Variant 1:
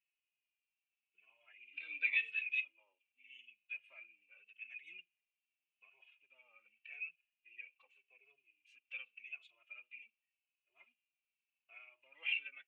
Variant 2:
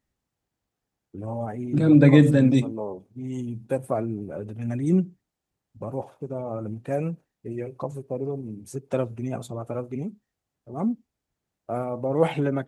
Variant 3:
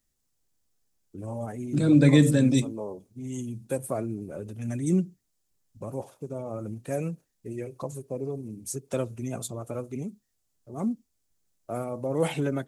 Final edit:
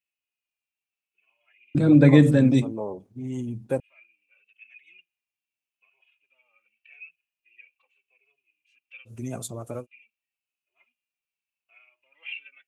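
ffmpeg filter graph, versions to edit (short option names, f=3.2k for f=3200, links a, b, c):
-filter_complex "[0:a]asplit=3[a][b][c];[a]atrim=end=1.752[d];[1:a]atrim=start=1.748:end=3.802[e];[b]atrim=start=3.798:end=9.15[f];[2:a]atrim=start=9.05:end=9.87[g];[c]atrim=start=9.77[h];[d][e]acrossfade=d=0.004:c1=hsin:c2=hsin[i];[i][f]acrossfade=d=0.004:c1=hsin:c2=hsin[j];[j][g]acrossfade=d=0.1:c1=tri:c2=tri[k];[k][h]acrossfade=d=0.1:c1=tri:c2=tri"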